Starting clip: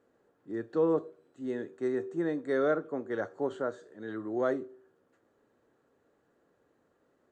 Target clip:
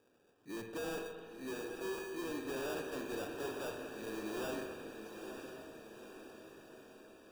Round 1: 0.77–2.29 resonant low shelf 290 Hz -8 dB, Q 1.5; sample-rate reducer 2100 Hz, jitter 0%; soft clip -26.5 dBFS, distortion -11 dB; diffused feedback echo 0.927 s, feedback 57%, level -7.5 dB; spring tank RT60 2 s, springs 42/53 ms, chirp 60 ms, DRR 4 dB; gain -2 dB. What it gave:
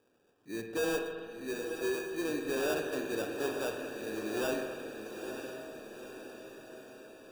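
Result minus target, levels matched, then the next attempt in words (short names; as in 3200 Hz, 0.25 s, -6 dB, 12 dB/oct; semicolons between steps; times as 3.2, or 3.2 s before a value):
soft clip: distortion -7 dB
0.77–2.29 resonant low shelf 290 Hz -8 dB, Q 1.5; sample-rate reducer 2100 Hz, jitter 0%; soft clip -37.5 dBFS, distortion -4 dB; diffused feedback echo 0.927 s, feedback 57%, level -7.5 dB; spring tank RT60 2 s, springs 42/53 ms, chirp 60 ms, DRR 4 dB; gain -2 dB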